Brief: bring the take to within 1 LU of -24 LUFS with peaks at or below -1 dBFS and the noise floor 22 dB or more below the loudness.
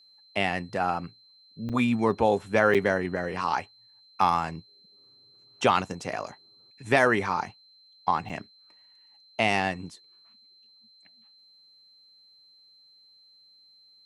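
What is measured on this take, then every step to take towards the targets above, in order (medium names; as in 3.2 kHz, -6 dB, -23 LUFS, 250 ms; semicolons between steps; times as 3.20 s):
dropouts 3; longest dropout 7.0 ms; steady tone 4.1 kHz; tone level -55 dBFS; loudness -26.5 LUFS; peak level -5.0 dBFS; loudness target -24.0 LUFS
-> interpolate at 1.69/2.74/8.29 s, 7 ms; band-stop 4.1 kHz, Q 30; trim +2.5 dB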